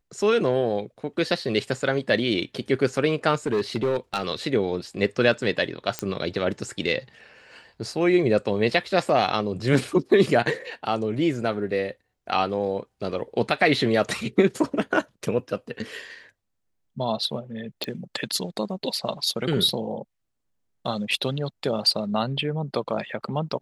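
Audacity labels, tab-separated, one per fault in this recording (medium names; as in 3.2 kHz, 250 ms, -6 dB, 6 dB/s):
3.460000	4.230000	clipped -18.5 dBFS
5.990000	5.990000	pop -10 dBFS
17.840000	17.840000	pop -14 dBFS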